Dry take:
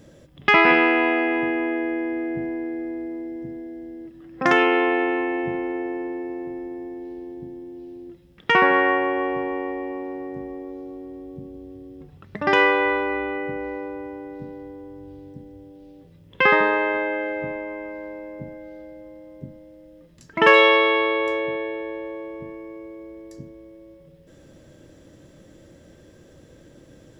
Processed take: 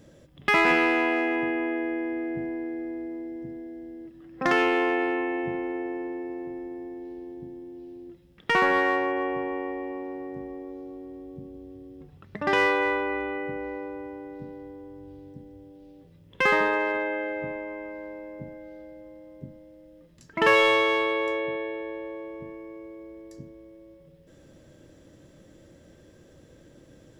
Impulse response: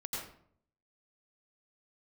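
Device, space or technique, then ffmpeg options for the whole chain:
parallel distortion: -filter_complex "[0:a]asplit=2[link_01][link_02];[link_02]asoftclip=type=hard:threshold=-16dB,volume=-4dB[link_03];[link_01][link_03]amix=inputs=2:normalize=0,volume=-8dB"

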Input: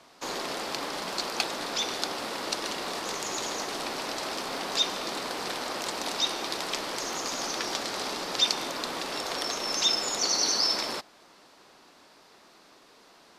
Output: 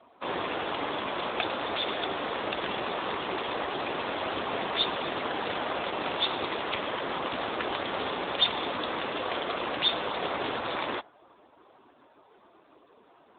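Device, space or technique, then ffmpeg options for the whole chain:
mobile call with aggressive noise cancelling: -af "highpass=140,afftdn=noise_reduction=12:noise_floor=-52,volume=5dB" -ar 8000 -c:a libopencore_amrnb -b:a 7950

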